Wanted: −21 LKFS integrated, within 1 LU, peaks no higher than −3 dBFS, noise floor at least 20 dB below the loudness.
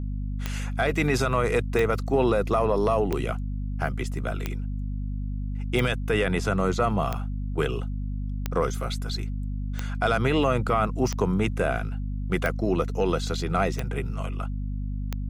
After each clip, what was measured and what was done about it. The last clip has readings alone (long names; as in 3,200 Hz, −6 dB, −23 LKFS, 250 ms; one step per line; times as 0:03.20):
number of clicks 12; mains hum 50 Hz; hum harmonics up to 250 Hz; level of the hum −27 dBFS; integrated loudness −27.0 LKFS; sample peak −11.5 dBFS; target loudness −21.0 LKFS
→ click removal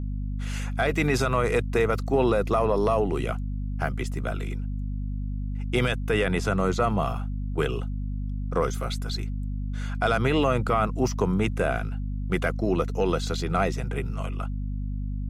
number of clicks 0; mains hum 50 Hz; hum harmonics up to 250 Hz; level of the hum −27 dBFS
→ mains-hum notches 50/100/150/200/250 Hz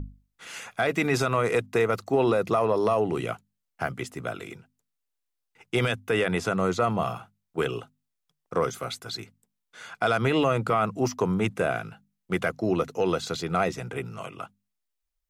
mains hum none found; integrated loudness −27.0 LKFS; sample peak −12.0 dBFS; target loudness −21.0 LKFS
→ level +6 dB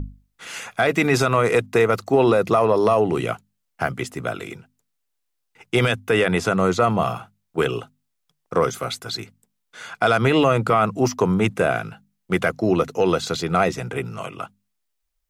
integrated loudness −21.0 LKFS; sample peak −6.0 dBFS; background noise floor −75 dBFS